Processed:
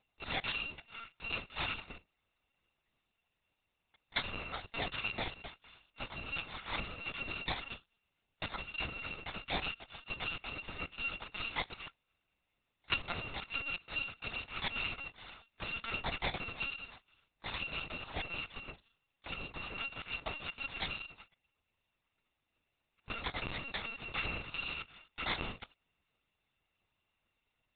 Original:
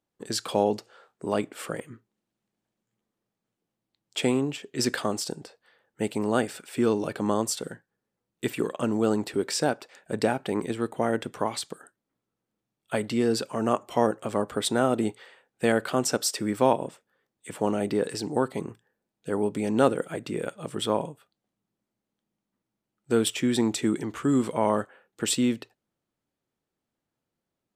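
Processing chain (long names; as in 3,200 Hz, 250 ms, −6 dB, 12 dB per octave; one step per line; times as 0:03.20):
samples in bit-reversed order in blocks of 256 samples
in parallel at −1.5 dB: brickwall limiter −14.5 dBFS, peak gain reduction 8.5 dB
on the sum: downward compressor 20 to 1, threshold −30 dBFS, peak gain reduction 20 dB
notch comb filter 1,500 Hz
linear-prediction vocoder at 8 kHz pitch kept
level +8.5 dB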